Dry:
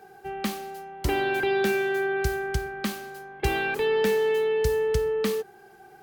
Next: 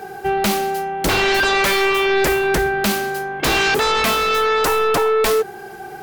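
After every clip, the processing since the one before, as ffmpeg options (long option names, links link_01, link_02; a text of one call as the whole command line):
ffmpeg -i in.wav -af "aeval=exprs='0.266*sin(PI/2*5.62*val(0)/0.266)':channel_layout=same,volume=-2dB" out.wav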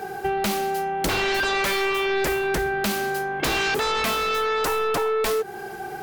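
ffmpeg -i in.wav -af "acompressor=threshold=-22dB:ratio=6" out.wav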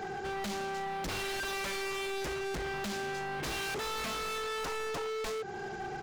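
ffmpeg -i in.wav -af "bass=frequency=250:gain=6,treble=frequency=4000:gain=2,aresample=16000,aresample=44100,asoftclip=type=hard:threshold=-30dB,volume=-5dB" out.wav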